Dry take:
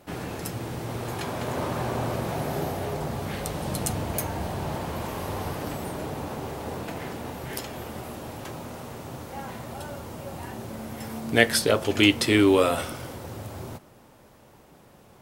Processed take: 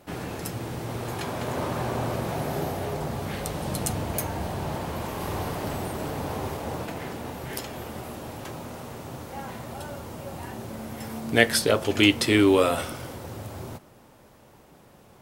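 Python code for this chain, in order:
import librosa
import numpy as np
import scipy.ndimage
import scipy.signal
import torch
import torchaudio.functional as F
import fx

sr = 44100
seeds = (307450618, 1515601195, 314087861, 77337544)

y = fx.reverse_delay(x, sr, ms=684, wet_db=-4, at=(4.52, 6.86))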